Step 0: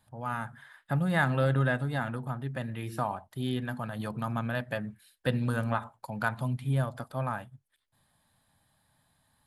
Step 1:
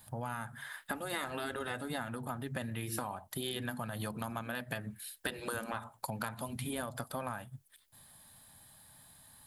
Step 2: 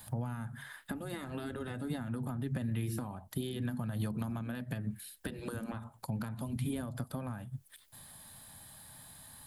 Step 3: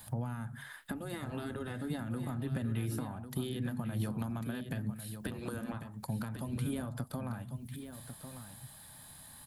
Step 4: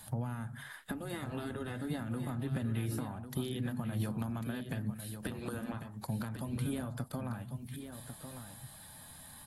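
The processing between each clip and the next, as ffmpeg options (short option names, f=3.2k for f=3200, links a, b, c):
-af "afftfilt=real='re*lt(hypot(re,im),0.178)':imag='im*lt(hypot(re,im),0.178)':win_size=1024:overlap=0.75,acompressor=threshold=-42dB:ratio=10,crystalizer=i=2:c=0,volume=6.5dB"
-filter_complex "[0:a]acrossover=split=320[a][b];[b]acompressor=threshold=-56dB:ratio=3[c];[a][c]amix=inputs=2:normalize=0,volume=6.5dB"
-af "aecho=1:1:1097:0.335"
-ar 44100 -c:a aac -b:a 48k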